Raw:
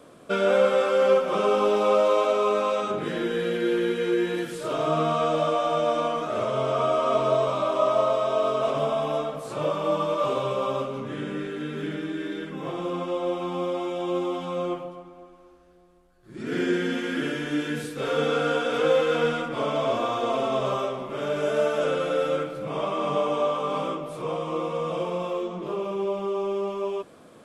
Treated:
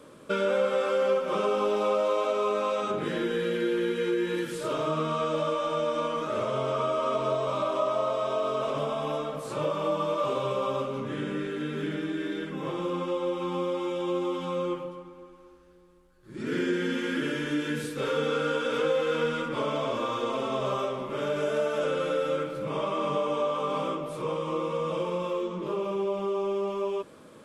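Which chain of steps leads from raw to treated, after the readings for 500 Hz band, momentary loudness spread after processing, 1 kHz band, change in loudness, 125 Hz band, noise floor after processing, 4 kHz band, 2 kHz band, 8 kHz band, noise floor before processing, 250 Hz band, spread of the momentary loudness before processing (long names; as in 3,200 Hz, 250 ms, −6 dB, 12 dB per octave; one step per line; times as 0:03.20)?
−3.5 dB, 6 LU, −3.5 dB, −3.5 dB, −2.0 dB, −51 dBFS, −2.5 dB, −2.5 dB, −2.5 dB, −50 dBFS, −2.0 dB, 10 LU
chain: downward compressor 2 to 1, threshold −26 dBFS, peak gain reduction 6.5 dB
Butterworth band-reject 710 Hz, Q 6.3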